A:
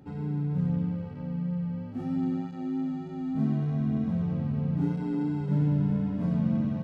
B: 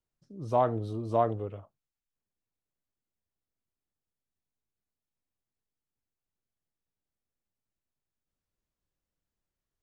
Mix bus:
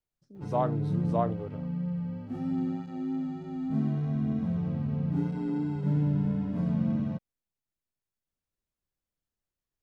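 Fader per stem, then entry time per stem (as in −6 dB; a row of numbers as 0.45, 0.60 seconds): −1.5, −3.0 decibels; 0.35, 0.00 seconds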